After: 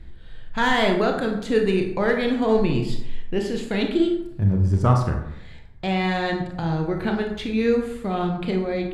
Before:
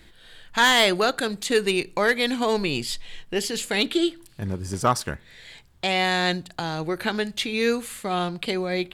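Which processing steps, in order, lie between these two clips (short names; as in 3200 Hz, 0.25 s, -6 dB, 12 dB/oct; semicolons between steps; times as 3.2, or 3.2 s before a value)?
RIAA curve playback; reverb RT60 0.80 s, pre-delay 22 ms, DRR 2.5 dB; gain -3.5 dB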